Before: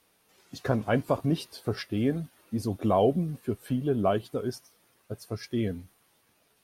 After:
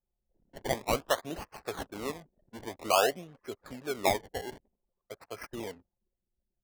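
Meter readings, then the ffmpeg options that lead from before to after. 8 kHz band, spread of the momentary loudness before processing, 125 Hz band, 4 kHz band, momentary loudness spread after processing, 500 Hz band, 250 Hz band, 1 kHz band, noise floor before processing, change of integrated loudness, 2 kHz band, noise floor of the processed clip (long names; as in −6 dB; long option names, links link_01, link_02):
+8.5 dB, 13 LU, −15.5 dB, +4.5 dB, 18 LU, −4.0 dB, −13.0 dB, +0.5 dB, −68 dBFS, −3.5 dB, +3.0 dB, below −85 dBFS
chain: -filter_complex "[0:a]acrossover=split=480 5300:gain=0.0708 1 0.0891[link_01][link_02][link_03];[link_01][link_02][link_03]amix=inputs=3:normalize=0,acrusher=samples=24:mix=1:aa=0.000001:lfo=1:lforange=24:lforate=0.51,anlmdn=0.000158,volume=1.5dB"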